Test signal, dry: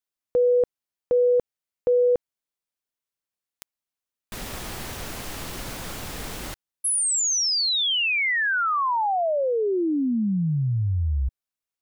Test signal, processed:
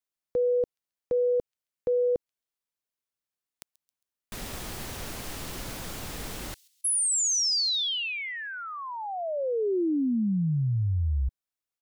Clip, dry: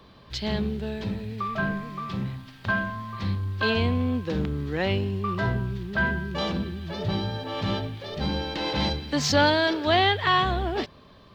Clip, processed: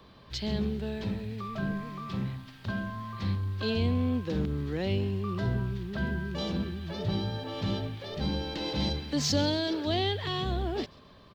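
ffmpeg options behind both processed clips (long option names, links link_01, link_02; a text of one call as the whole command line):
ffmpeg -i in.wav -filter_complex "[0:a]acrossover=split=540|3300[link_01][link_02][link_03];[link_02]acompressor=threshold=-36dB:ratio=6:attack=0.15:release=114:knee=1:detection=peak[link_04];[link_03]aecho=1:1:135|270|405:0.119|0.0487|0.02[link_05];[link_01][link_04][link_05]amix=inputs=3:normalize=0,volume=-2.5dB" out.wav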